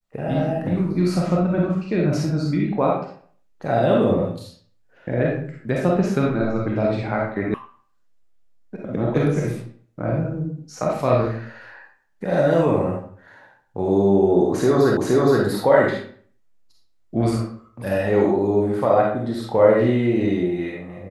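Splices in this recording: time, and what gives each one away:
7.54 sound cut off
14.97 repeat of the last 0.47 s

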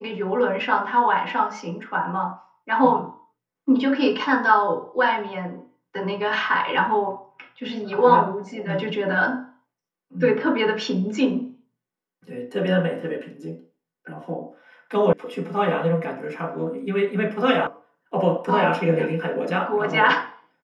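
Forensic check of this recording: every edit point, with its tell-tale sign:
15.13 sound cut off
17.67 sound cut off

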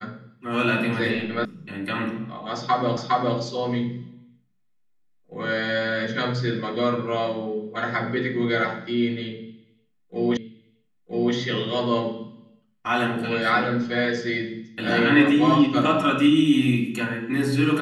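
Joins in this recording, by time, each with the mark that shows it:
1.45 sound cut off
2.97 repeat of the last 0.41 s
10.37 repeat of the last 0.97 s

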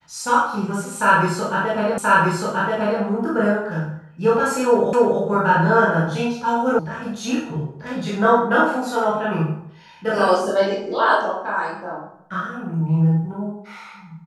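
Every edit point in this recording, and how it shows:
1.98 repeat of the last 1.03 s
4.93 repeat of the last 0.28 s
6.79 sound cut off

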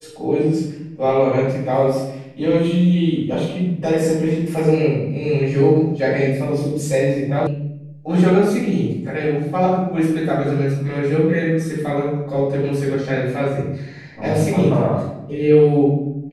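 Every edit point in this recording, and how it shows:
7.47 sound cut off

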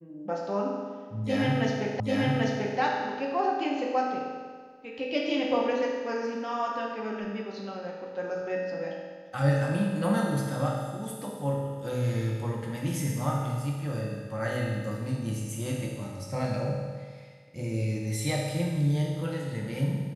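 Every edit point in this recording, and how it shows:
2 repeat of the last 0.79 s

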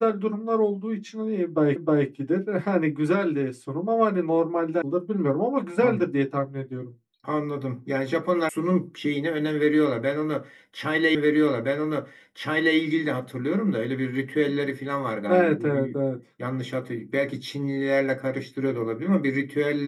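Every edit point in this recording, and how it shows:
1.76 repeat of the last 0.31 s
4.82 sound cut off
8.49 sound cut off
11.15 repeat of the last 1.62 s

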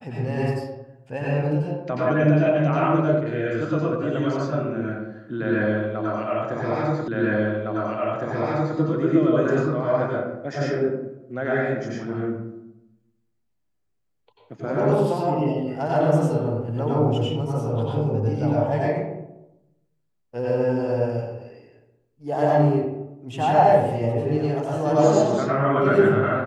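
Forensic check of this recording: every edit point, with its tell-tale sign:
7.08 repeat of the last 1.71 s

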